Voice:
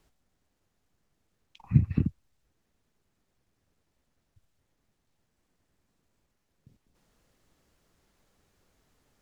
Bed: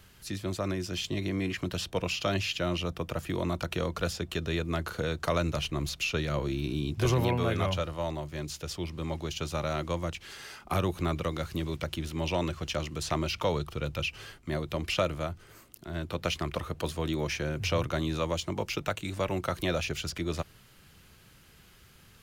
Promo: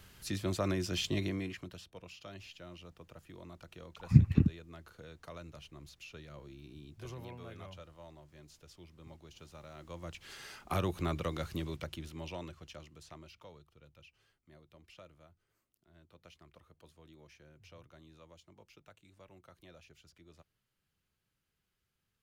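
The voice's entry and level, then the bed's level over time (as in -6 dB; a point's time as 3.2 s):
2.40 s, 0.0 dB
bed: 1.18 s -1 dB
1.9 s -20 dB
9.73 s -20 dB
10.32 s -4.5 dB
11.53 s -4.5 dB
13.66 s -27.5 dB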